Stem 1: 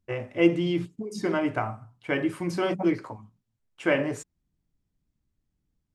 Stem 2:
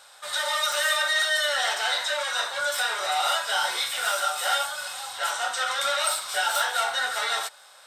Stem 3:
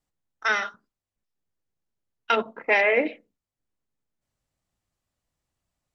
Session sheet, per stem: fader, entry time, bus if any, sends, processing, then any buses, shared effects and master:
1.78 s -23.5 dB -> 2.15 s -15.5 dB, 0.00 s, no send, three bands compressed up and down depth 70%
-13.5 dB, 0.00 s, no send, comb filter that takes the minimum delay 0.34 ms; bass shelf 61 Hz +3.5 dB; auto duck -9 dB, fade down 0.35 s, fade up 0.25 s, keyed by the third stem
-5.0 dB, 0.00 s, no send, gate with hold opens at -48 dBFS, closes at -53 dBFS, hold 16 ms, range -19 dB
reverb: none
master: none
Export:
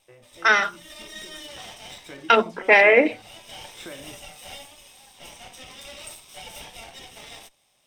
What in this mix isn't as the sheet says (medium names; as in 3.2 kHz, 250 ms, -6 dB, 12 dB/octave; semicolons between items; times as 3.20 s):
stem 2: missing bass shelf 61 Hz +3.5 dB; stem 3 -5.0 dB -> +6.0 dB